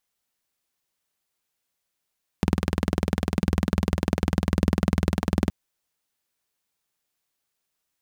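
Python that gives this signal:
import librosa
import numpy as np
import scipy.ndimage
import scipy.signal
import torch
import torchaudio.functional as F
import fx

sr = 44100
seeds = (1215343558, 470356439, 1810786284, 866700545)

y = fx.engine_single(sr, seeds[0], length_s=3.07, rpm=2400, resonances_hz=(82.0, 180.0))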